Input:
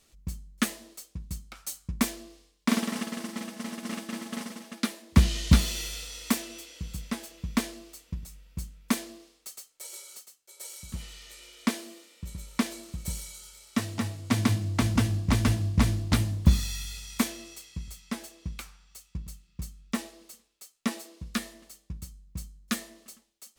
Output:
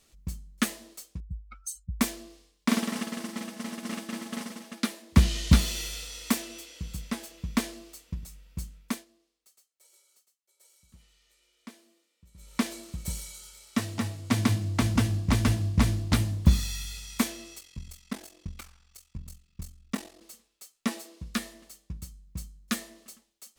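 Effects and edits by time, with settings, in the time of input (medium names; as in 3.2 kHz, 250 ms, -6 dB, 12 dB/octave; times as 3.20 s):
1.20–2.00 s: spectral contrast enhancement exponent 2.6
8.76–12.62 s: dip -19 dB, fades 0.29 s
17.59–20.21 s: ring modulator 22 Hz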